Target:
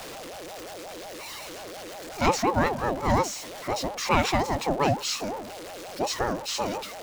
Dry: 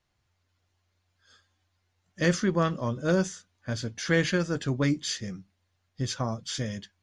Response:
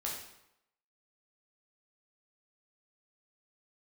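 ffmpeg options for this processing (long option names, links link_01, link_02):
-af "aeval=exprs='val(0)+0.5*0.02*sgn(val(0))':channel_layout=same,aeval=exprs='val(0)*sin(2*PI*560*n/s+560*0.3/5.6*sin(2*PI*5.6*n/s))':channel_layout=same,volume=3.5dB"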